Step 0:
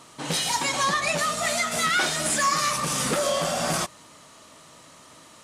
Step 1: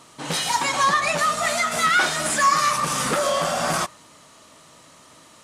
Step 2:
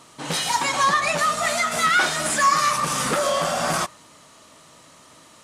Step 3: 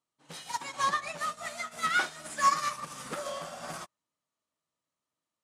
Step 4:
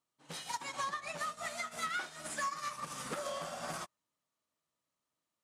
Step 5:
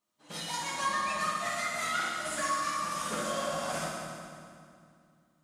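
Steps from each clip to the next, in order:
dynamic EQ 1200 Hz, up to +6 dB, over -37 dBFS, Q 0.87
nothing audible
upward expander 2.5:1, over -38 dBFS; gain -4.5 dB
compressor 6:1, threshold -35 dBFS, peak gain reduction 15 dB
reverb RT60 2.4 s, pre-delay 5 ms, DRR -6 dB

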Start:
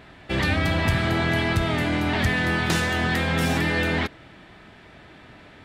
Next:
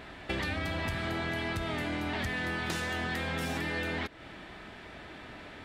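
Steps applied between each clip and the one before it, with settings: bell 130 Hz -5.5 dB 1.1 oct; compressor 6:1, threshold -33 dBFS, peak gain reduction 13 dB; gain +1.5 dB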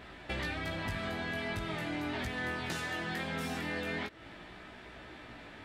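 chorus 0.41 Hz, delay 16 ms, depth 4 ms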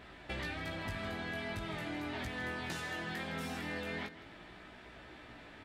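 echo 0.16 s -14 dB; gain -3.5 dB

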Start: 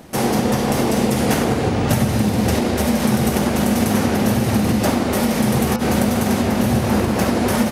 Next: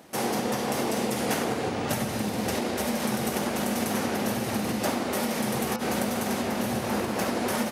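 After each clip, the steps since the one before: HPF 340 Hz 6 dB/oct; gain -6.5 dB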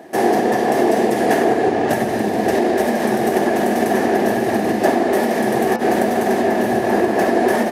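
small resonant body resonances 380/670/1700 Hz, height 17 dB, ringing for 20 ms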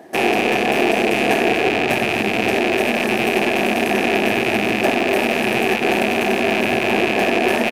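rattling part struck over -33 dBFS, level -6 dBFS; on a send: echo 0.246 s -10.5 dB; on the sum: gain -2.5 dB

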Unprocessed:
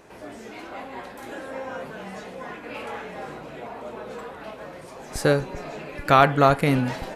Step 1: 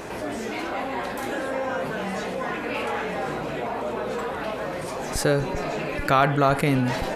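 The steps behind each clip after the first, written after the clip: fast leveller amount 50%; gain -4 dB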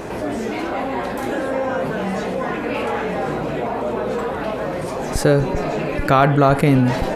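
tilt shelf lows +3.5 dB, about 890 Hz; gain +4.5 dB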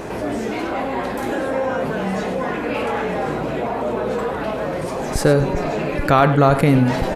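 echo 0.1 s -13.5 dB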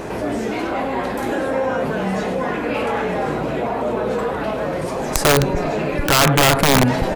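wrapped overs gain 7.5 dB; gain +1 dB

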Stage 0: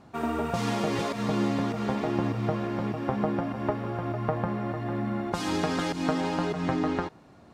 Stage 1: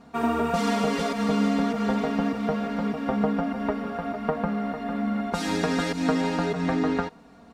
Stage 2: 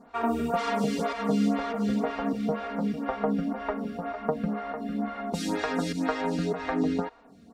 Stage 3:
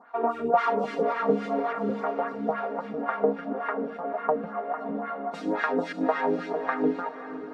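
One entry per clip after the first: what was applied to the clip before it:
comb 4.3 ms, depth 96%
photocell phaser 2 Hz
LFO band-pass sine 3.6 Hz 390–1600 Hz; diffused feedback echo 0.553 s, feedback 43%, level -12 dB; gain +9 dB

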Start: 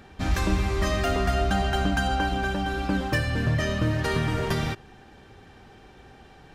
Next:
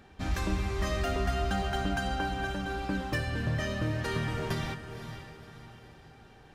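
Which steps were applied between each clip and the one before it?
diffused feedback echo 0.532 s, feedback 42%, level -10 dB; gain -6.5 dB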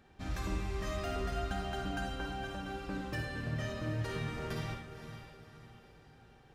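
reverb RT60 0.45 s, pre-delay 47 ms, DRR 3 dB; gain -8 dB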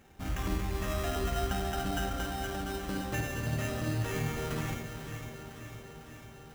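sample-rate reducer 4500 Hz, jitter 0%; echo with dull and thin repeats by turns 0.25 s, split 890 Hz, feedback 84%, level -10.5 dB; gain +3.5 dB

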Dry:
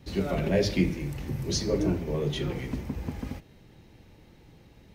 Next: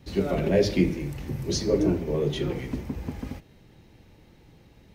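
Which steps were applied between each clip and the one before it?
dynamic EQ 380 Hz, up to +5 dB, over -36 dBFS, Q 0.98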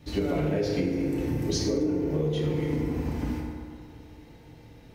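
FDN reverb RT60 2.1 s, low-frequency decay 0.8×, high-frequency decay 0.45×, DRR -2.5 dB; compressor 10:1, threshold -23 dBFS, peak gain reduction 12.5 dB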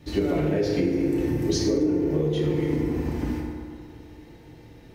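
small resonant body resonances 350/1800 Hz, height 7 dB; gain +1.5 dB

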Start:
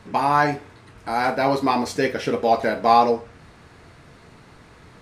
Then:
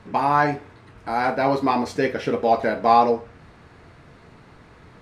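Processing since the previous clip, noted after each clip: high shelf 4600 Hz -9.5 dB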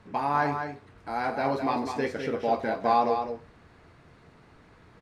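echo 0.205 s -7 dB; gain -7.5 dB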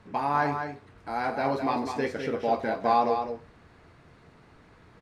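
nothing audible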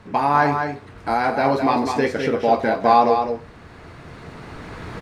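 recorder AGC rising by 7.4 dB/s; gain +8.5 dB

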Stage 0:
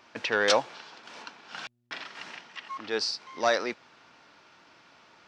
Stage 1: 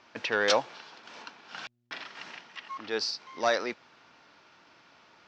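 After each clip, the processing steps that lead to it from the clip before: LPF 7000 Hz 24 dB/oct; gain -1.5 dB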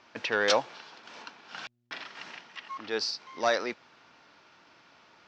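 nothing audible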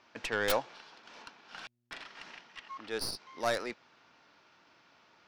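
tracing distortion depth 0.13 ms; gain -5 dB

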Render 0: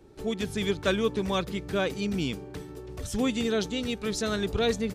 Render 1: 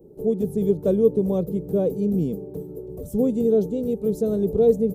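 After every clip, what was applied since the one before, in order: EQ curve 110 Hz 0 dB, 160 Hz +12 dB, 310 Hz +5 dB, 470 Hz +13 dB, 1700 Hz -25 dB, 5000 Hz -18 dB, 9500 Hz -4 dB, 14000 Hz +11 dB; gain -2 dB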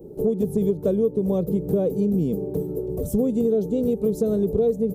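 compressor, threshold -26 dBFS, peak gain reduction 13.5 dB; gain +7.5 dB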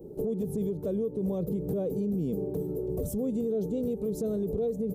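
limiter -19.5 dBFS, peak gain reduction 9 dB; gain -3.5 dB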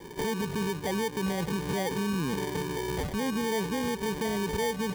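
sample-and-hold 33×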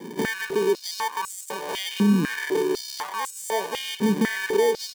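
echo 0.137 s -16 dB; stepped high-pass 4 Hz 220–7800 Hz; gain +3 dB

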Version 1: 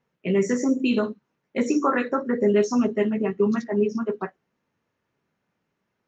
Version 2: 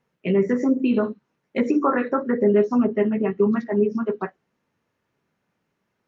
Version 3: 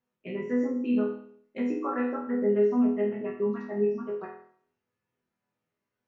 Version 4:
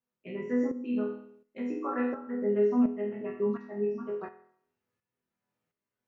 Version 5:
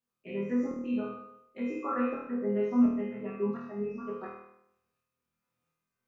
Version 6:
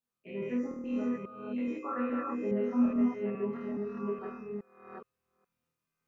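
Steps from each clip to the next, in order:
treble ducked by the level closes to 1600 Hz, closed at -17.5 dBFS; gain +2 dB
resonator bank E2 major, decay 0.6 s; gain +5 dB
tremolo saw up 1.4 Hz, depth 65%
flutter echo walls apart 4.3 m, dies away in 0.77 s; gain -2 dB
reverse delay 0.419 s, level -1.5 dB; gain -3.5 dB

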